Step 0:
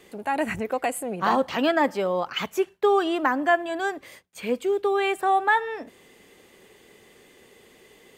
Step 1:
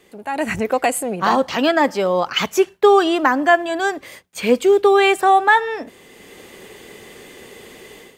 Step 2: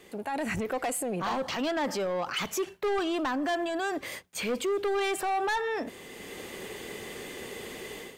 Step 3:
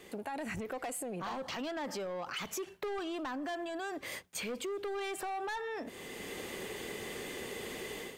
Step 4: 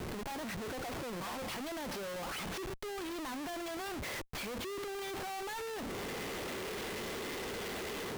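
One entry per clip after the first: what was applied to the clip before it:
dynamic bell 5.6 kHz, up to +6 dB, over -49 dBFS, Q 1.3; level rider gain up to 14 dB; trim -1 dB
saturation -15 dBFS, distortion -9 dB; peak limiter -25 dBFS, peak gain reduction 10 dB
compression 6:1, threshold -37 dBFS, peak gain reduction 10 dB
CVSD coder 32 kbps; Schmitt trigger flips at -50 dBFS

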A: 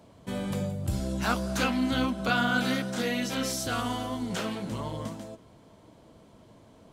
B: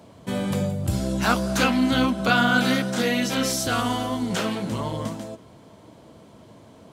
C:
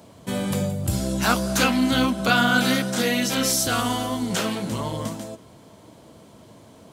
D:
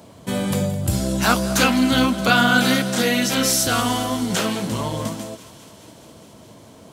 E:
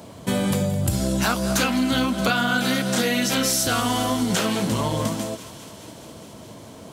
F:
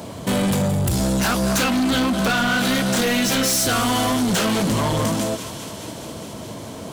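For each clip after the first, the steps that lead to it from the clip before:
high-pass 70 Hz; trim +6.5 dB
treble shelf 5.6 kHz +8 dB
thinning echo 208 ms, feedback 80%, high-pass 760 Hz, level -17.5 dB; trim +3 dB
compression, threshold -22 dBFS, peak gain reduction 10.5 dB; trim +3.5 dB
saturation -24.5 dBFS, distortion -9 dB; trim +8 dB

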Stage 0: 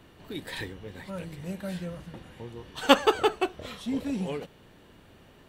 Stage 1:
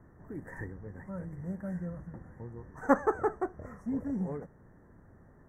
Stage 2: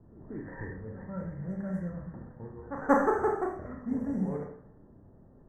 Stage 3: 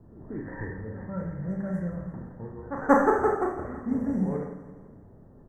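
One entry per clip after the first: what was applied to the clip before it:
Chebyshev band-stop 1.9–5.9 kHz, order 4; tone controls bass +7 dB, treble -14 dB; trim -5.5 dB
pre-echo 185 ms -16 dB; Schroeder reverb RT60 0.56 s, combs from 28 ms, DRR 1 dB; level-controlled noise filter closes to 580 Hz, open at -28 dBFS
feedback delay 168 ms, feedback 53%, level -13.5 dB; trim +4 dB

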